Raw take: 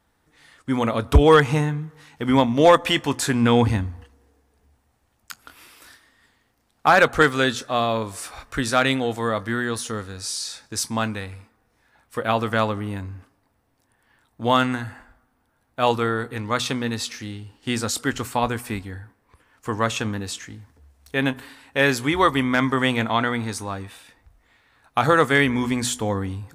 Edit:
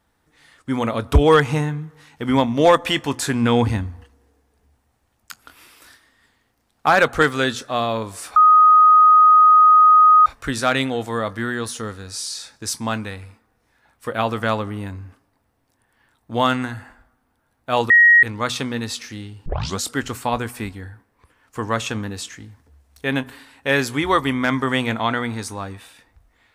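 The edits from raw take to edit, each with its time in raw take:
0:08.36: insert tone 1,250 Hz −7.5 dBFS 1.90 s
0:16.00–0:16.33: beep over 1,890 Hz −7.5 dBFS
0:17.56: tape start 0.33 s

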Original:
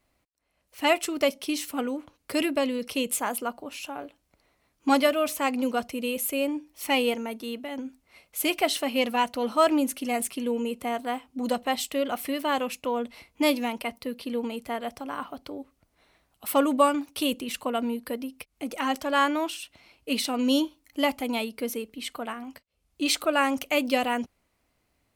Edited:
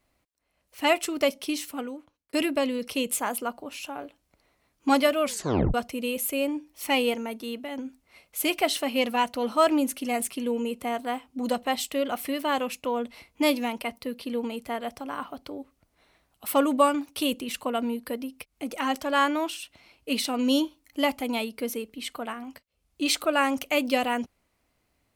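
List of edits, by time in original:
0:01.47–0:02.33: fade out
0:05.22: tape stop 0.52 s

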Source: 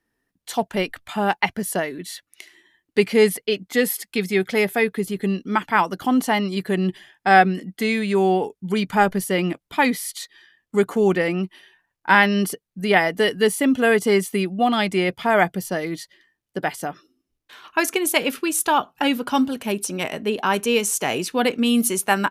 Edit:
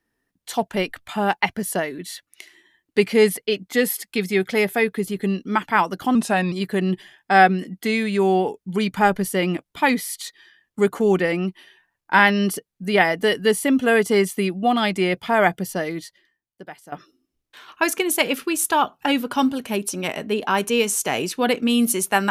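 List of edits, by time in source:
0:06.15–0:06.48: play speed 89%
0:15.82–0:16.88: fade out quadratic, to −16 dB

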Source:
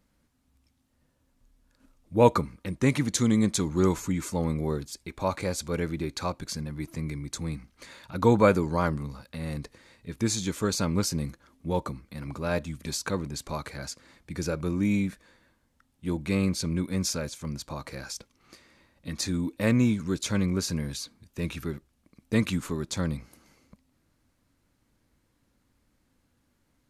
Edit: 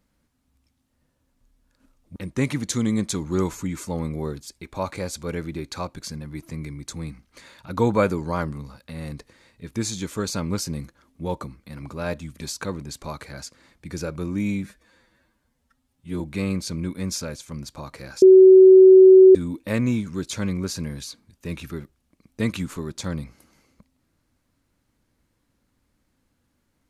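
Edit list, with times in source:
0:02.16–0:02.61: remove
0:15.09–0:16.13: time-stretch 1.5×
0:18.15–0:19.28: beep over 377 Hz −6 dBFS

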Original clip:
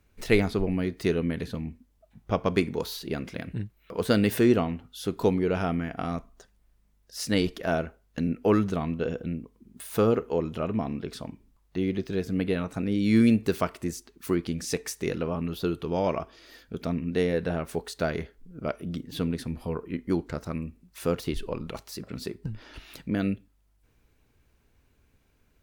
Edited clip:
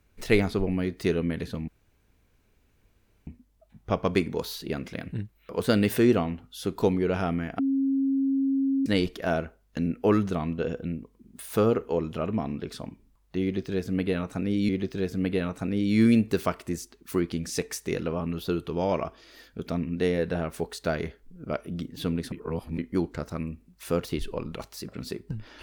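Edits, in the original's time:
0:01.68: splice in room tone 1.59 s
0:06.00–0:07.27: beep over 271 Hz −21.5 dBFS
0:11.84–0:13.10: repeat, 2 plays
0:19.47–0:19.93: reverse

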